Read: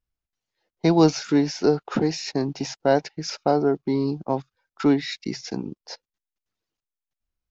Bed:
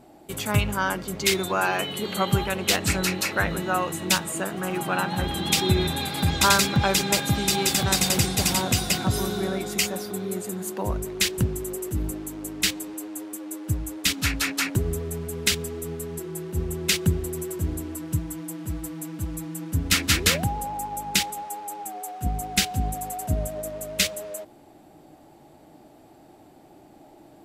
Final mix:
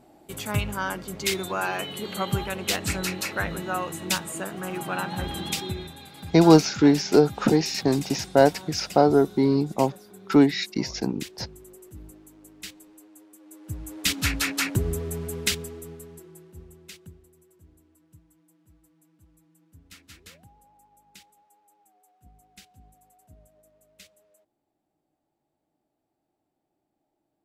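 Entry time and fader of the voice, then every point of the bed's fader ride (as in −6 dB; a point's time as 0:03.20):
5.50 s, +2.5 dB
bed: 0:05.40 −4 dB
0:05.96 −16.5 dB
0:13.36 −16.5 dB
0:14.11 −0.5 dB
0:15.33 −0.5 dB
0:17.35 −28.5 dB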